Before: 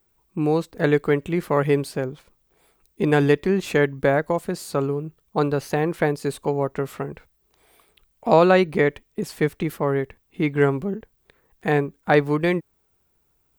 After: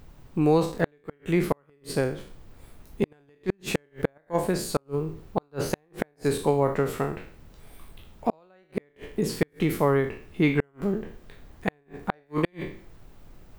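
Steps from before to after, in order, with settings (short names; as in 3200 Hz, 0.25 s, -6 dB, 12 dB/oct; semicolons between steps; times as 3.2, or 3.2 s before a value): spectral trails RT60 0.47 s; added noise brown -46 dBFS; flipped gate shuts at -10 dBFS, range -42 dB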